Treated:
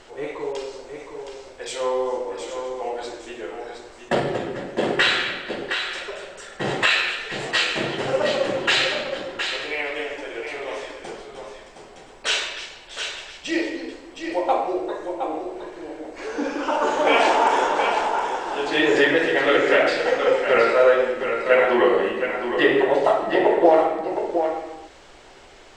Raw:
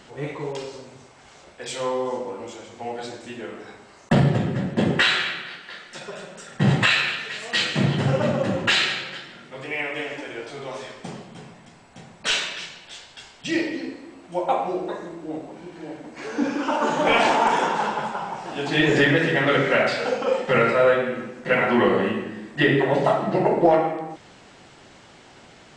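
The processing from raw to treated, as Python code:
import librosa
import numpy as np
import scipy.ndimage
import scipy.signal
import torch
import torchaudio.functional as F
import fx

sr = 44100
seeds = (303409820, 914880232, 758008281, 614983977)

p1 = fx.low_shelf_res(x, sr, hz=260.0, db=-12.5, q=1.5)
p2 = fx.dmg_noise_colour(p1, sr, seeds[0], colour='brown', level_db=-55.0)
y = p2 + fx.echo_single(p2, sr, ms=716, db=-7.0, dry=0)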